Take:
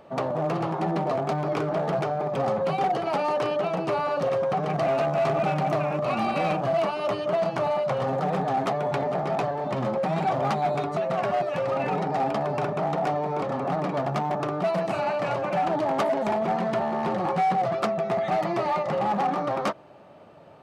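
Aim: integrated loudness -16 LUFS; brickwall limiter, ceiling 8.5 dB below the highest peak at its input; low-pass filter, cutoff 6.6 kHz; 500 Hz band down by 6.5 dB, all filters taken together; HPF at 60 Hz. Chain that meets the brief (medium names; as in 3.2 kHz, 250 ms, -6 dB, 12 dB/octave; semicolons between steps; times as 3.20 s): high-pass 60 Hz; low-pass 6.6 kHz; peaking EQ 500 Hz -9 dB; trim +16.5 dB; peak limiter -8 dBFS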